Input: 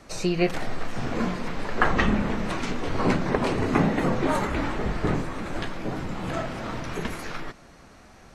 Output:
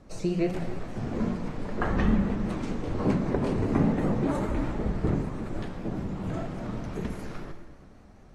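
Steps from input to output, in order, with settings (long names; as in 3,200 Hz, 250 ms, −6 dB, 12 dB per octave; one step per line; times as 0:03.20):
tilt shelving filter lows +7 dB, about 710 Hz
dense smooth reverb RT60 1.6 s, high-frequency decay 0.95×, DRR 6 dB
dynamic equaliser 8,500 Hz, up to +4 dB, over −54 dBFS, Q 0.75
pitch modulation by a square or saw wave saw up 5.1 Hz, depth 100 cents
level −7 dB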